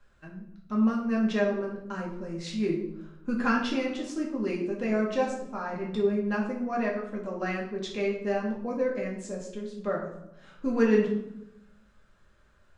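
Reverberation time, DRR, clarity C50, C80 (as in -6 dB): 0.85 s, -3.0 dB, 5.0 dB, 8.5 dB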